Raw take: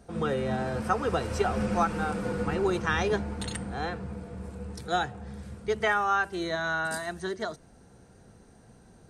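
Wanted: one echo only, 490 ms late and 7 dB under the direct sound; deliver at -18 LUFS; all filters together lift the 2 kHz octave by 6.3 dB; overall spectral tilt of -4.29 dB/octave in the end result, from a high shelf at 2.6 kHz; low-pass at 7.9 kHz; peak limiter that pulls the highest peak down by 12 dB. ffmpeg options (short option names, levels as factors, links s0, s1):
-af "lowpass=7900,equalizer=f=2000:t=o:g=5.5,highshelf=f=2600:g=8,alimiter=limit=0.1:level=0:latency=1,aecho=1:1:490:0.447,volume=3.98"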